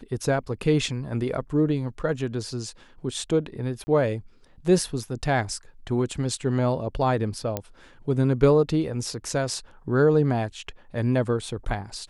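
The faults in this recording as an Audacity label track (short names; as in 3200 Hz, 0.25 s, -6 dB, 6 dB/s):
3.840000	3.870000	gap 30 ms
7.570000	7.570000	pop -12 dBFS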